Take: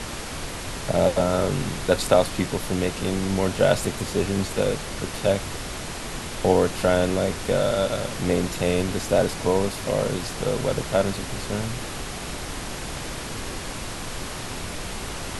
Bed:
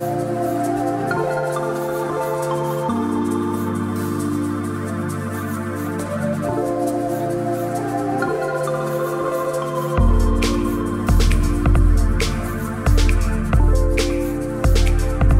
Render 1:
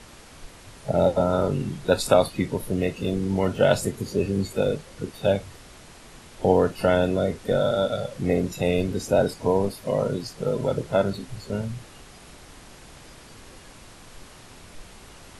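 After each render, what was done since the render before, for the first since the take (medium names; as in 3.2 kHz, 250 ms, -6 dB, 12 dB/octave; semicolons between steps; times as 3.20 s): noise print and reduce 14 dB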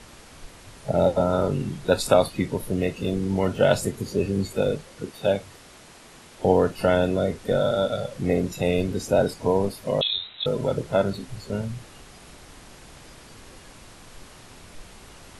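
4.87–6.45 s: bass shelf 100 Hz -10.5 dB; 10.01–10.46 s: frequency inversion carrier 3.9 kHz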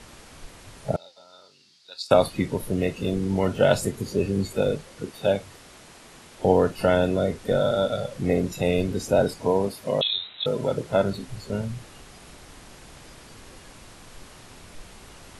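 0.96–2.11 s: band-pass filter 4.6 kHz, Q 4.4; 9.42–10.93 s: high-pass 120 Hz 6 dB/octave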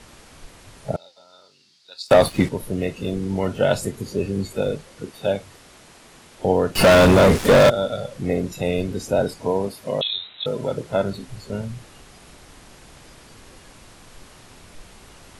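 2.08–2.49 s: waveshaping leveller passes 2; 6.75–7.70 s: waveshaping leveller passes 5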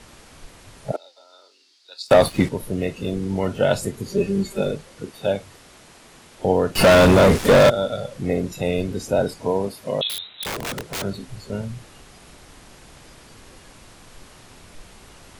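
0.92–2.05 s: steep high-pass 270 Hz 48 dB/octave; 4.09–4.71 s: comb 5.1 ms; 10.09–11.02 s: integer overflow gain 22.5 dB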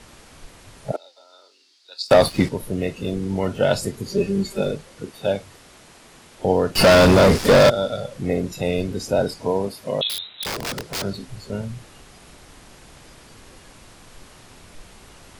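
dynamic bell 4.9 kHz, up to +7 dB, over -48 dBFS, Q 3.3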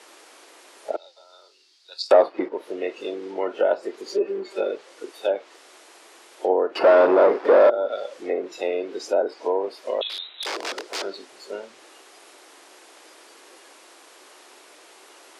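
low-pass that closes with the level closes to 1.2 kHz, closed at -15.5 dBFS; Chebyshev high-pass 330 Hz, order 4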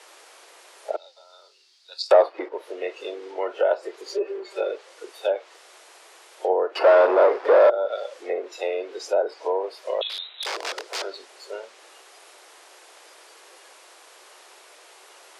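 high-pass 410 Hz 24 dB/octave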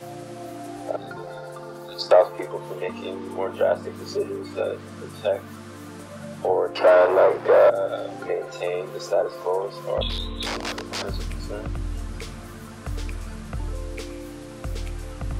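add bed -15.5 dB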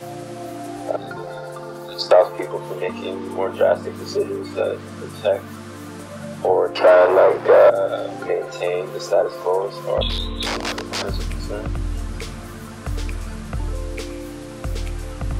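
trim +4.5 dB; peak limiter -3 dBFS, peak gain reduction 2.5 dB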